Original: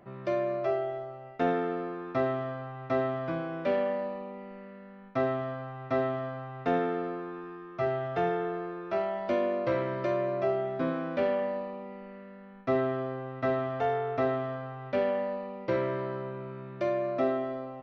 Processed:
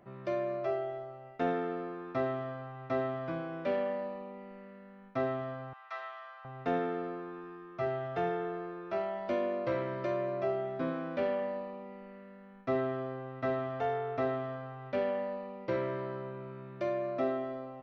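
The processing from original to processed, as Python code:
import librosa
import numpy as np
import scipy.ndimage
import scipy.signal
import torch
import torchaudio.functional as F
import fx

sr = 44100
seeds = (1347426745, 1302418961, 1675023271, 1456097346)

y = fx.highpass(x, sr, hz=970.0, slope=24, at=(5.73, 6.45))
y = F.gain(torch.from_numpy(y), -4.0).numpy()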